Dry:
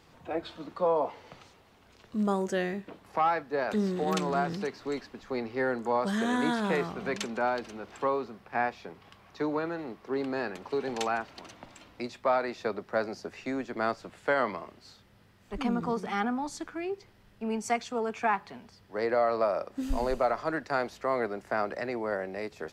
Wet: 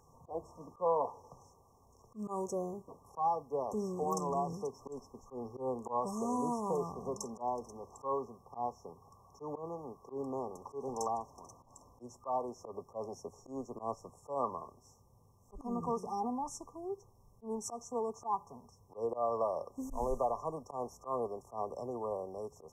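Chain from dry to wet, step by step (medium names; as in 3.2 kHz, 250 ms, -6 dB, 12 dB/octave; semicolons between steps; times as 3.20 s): FFT band-reject 1.2–5.3 kHz; graphic EQ with 31 bands 200 Hz -9 dB, 315 Hz -12 dB, 630 Hz -6 dB, 1.6 kHz +9 dB; slow attack 110 ms; trim -2 dB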